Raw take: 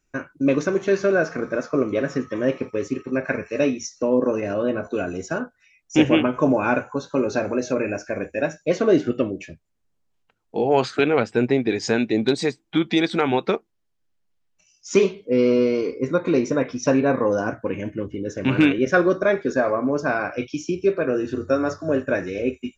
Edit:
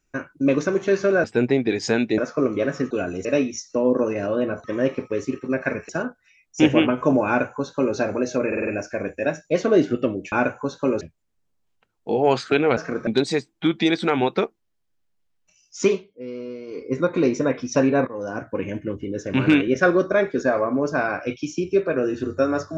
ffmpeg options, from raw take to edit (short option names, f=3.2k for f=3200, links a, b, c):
-filter_complex "[0:a]asplit=18[a][b][c][d][e][f][g][h][i][j][k][l][m][n][o][p][q][r];[a]atrim=end=1.242[s];[b]atrim=start=11.238:end=12.182[t];[c]atrim=start=1.538:end=2.272[u];[d]atrim=start=4.908:end=5.252[v];[e]atrim=start=3.518:end=4.912[w];[f]atrim=start=2.268:end=3.522[x];[g]atrim=start=5.248:end=7.882[y];[h]atrim=start=7.828:end=7.882[z];[i]atrim=start=7.828:end=7.882[aa];[j]atrim=start=7.828:end=7.882[ab];[k]atrim=start=7.828:end=9.482[ac];[l]atrim=start=6.628:end=7.322[ad];[m]atrim=start=9.478:end=11.242[ae];[n]atrim=start=1.238:end=1.542[af];[o]atrim=start=12.178:end=15.19,asetpts=PTS-STARTPTS,afade=t=out:st=2.742:d=0.27:silence=0.16788[ag];[p]atrim=start=15.19:end=15.78,asetpts=PTS-STARTPTS,volume=-15.5dB[ah];[q]atrim=start=15.78:end=17.18,asetpts=PTS-STARTPTS,afade=t=in:d=0.27:silence=0.16788,afade=t=out:st=1.396:d=0.004:c=hsin:silence=0.125893[ai];[r]atrim=start=17.18,asetpts=PTS-STARTPTS,afade=t=in:d=0.53:silence=0.125893[aj];[s][t]acrossfade=d=0.004:c1=hsin:c2=hsin[ak];[ak][u]acrossfade=d=0.004:c1=hsin:c2=hsin[al];[al][v]acrossfade=d=0.004:c1=hsin:c2=hsin[am];[am][w]acrossfade=d=0.004:c1=hsin:c2=hsin[an];[an][x]acrossfade=d=0.004:c1=hsin:c2=hsin[ao];[ao][y]acrossfade=d=0.004:c1=hsin:c2=hsin[ap];[ap][z]acrossfade=d=0.004:c1=hsin:c2=hsin[aq];[aq][aa]acrossfade=d=0.004:c1=hsin:c2=hsin[ar];[ar][ab]acrossfade=d=0.004:c1=hsin:c2=hsin[as];[as][ac]acrossfade=d=0.004:c1=hsin:c2=hsin[at];[at][ad]acrossfade=d=0.004:c1=hsin:c2=hsin[au];[au][ae]acrossfade=d=0.004:c1=hsin:c2=hsin[av];[av][af]acrossfade=d=0.004:c1=hsin:c2=hsin[aw];[ag][ah][ai][aj]concat=n=4:v=0:a=1[ax];[aw][ax]acrossfade=d=0.004:c1=hsin:c2=hsin"